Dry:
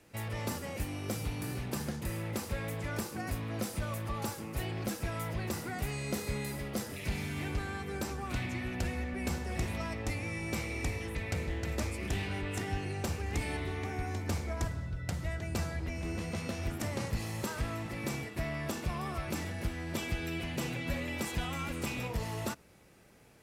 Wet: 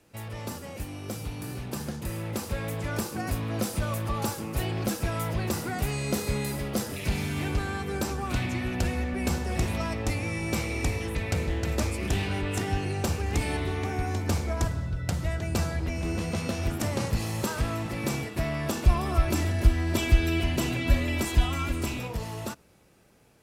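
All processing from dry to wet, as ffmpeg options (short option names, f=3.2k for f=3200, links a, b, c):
-filter_complex "[0:a]asettb=1/sr,asplit=3[a][b][c];[a]atrim=end=18.854[d];[b]atrim=start=18.85:end=21.98,asetpts=PTS-STARTPTS,afade=t=in:d=0.004:c=qsin,afade=t=out:st=3.126:d=0.004:c=qsin,lowshelf=f=91:g=12,aecho=1:1:3:0.48,atrim=end_sample=138033[e];[c]atrim=start=21.976[f];[d][e]acrossfade=d=0.004:c1=hsin:c2=qsin[g];[g][f]acrossfade=d=0.004:c1=qsin:c2=hsin,equalizer=f=2k:t=o:w=0.43:g=-4,dynaudnorm=f=430:g=11:m=7dB"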